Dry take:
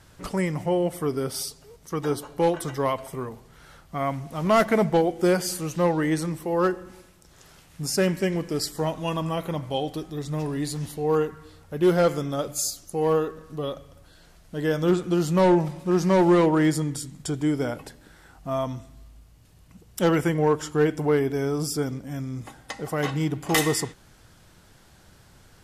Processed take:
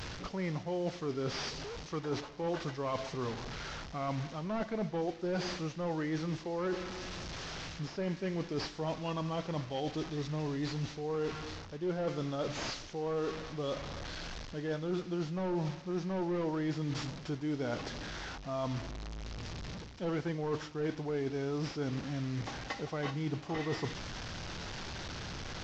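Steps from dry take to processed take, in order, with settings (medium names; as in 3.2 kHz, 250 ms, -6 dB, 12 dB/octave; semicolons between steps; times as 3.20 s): one-bit delta coder 32 kbps, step -35.5 dBFS; reverse; compression 6:1, threshold -33 dBFS, peak gain reduction 16.5 dB; reverse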